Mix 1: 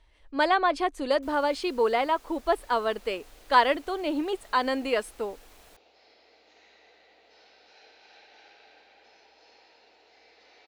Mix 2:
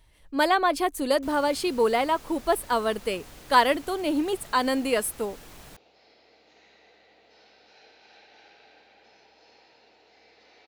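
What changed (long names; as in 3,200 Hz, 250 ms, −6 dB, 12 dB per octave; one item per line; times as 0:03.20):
speech: remove high-frequency loss of the air 100 metres
first sound +7.0 dB
master: add parametric band 140 Hz +14 dB 1.2 octaves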